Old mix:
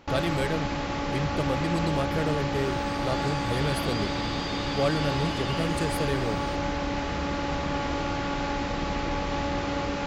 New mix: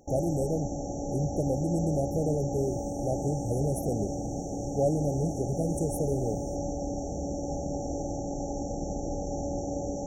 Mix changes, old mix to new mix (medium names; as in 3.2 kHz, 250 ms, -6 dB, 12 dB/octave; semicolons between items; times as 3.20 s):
first sound: add tilt shelf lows -3.5 dB, about 860 Hz; master: add brick-wall FIR band-stop 830–5500 Hz